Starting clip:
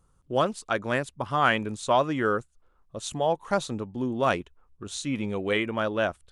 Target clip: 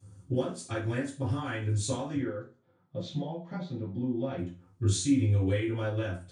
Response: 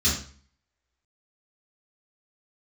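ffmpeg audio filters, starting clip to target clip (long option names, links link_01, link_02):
-filter_complex "[0:a]acompressor=threshold=-38dB:ratio=6,asettb=1/sr,asplit=3[link_01][link_02][link_03];[link_01]atrim=end=2.154[link_04];[link_02]atrim=start=2.15:end=4.38,asetpts=PTS-STARTPTS,afade=type=in:duration=0.004:curve=qsin,afade=type=out:start_time=2.226:duration=0.004:curve=qsin,highpass=frequency=150:width=0.5412,highpass=frequency=150:width=1.3066,equalizer=frequency=160:width_type=q:width=4:gain=9,equalizer=frequency=280:width_type=q:width=4:gain=-8,equalizer=frequency=430:width_type=q:width=4:gain=-6,equalizer=frequency=1100:width_type=q:width=4:gain=-6,equalizer=frequency=1600:width_type=q:width=4:gain=-7,equalizer=frequency=2700:width_type=q:width=4:gain=-9,lowpass=frequency=3600:width=0.5412,lowpass=frequency=3600:width=1.3066[link_05];[link_03]atrim=start=4.376[link_06];[link_04][link_05]acrossfade=duration=0.004:curve1=hsin:curve2=qsin[link_07];[link_07][link_06]acrossfade=duration=0.004:curve1=qsin:curve2=hsin[link_08];[1:a]atrim=start_sample=2205,asetrate=57330,aresample=44100[link_09];[link_08][link_09]afir=irnorm=-1:irlink=0,volume=-5dB"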